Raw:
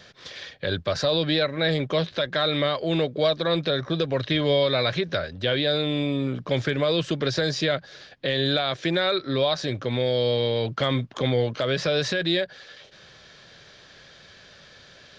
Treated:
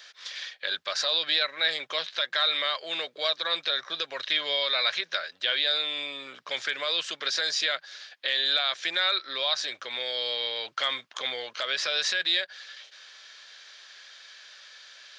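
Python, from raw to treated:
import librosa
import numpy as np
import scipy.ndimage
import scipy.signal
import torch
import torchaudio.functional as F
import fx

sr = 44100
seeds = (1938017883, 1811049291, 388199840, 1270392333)

y = scipy.signal.sosfilt(scipy.signal.butter(2, 1200.0, 'highpass', fs=sr, output='sos'), x)
y = fx.high_shelf(y, sr, hz=5700.0, db=5.0)
y = y * 10.0 ** (1.0 / 20.0)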